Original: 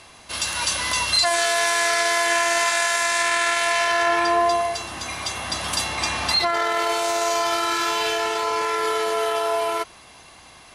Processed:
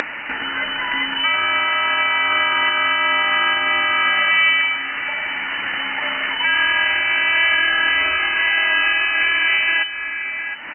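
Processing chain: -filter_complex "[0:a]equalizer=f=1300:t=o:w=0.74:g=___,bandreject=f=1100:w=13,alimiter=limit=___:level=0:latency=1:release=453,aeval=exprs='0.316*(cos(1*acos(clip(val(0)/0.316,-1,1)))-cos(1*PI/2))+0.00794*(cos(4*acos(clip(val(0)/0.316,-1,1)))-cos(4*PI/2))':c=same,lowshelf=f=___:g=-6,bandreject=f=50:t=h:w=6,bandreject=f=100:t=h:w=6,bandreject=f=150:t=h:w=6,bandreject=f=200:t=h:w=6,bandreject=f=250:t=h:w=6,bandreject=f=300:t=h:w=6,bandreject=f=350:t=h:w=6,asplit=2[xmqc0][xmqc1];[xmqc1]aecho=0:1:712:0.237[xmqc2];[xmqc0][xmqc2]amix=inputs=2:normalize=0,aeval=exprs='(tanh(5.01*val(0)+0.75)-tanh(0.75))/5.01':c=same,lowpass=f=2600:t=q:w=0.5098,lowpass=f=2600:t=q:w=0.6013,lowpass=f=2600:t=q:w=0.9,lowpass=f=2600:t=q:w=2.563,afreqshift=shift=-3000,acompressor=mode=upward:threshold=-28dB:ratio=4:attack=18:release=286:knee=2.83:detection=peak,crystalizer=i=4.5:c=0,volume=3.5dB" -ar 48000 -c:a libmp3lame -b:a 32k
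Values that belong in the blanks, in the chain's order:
7.5, -10dB, 480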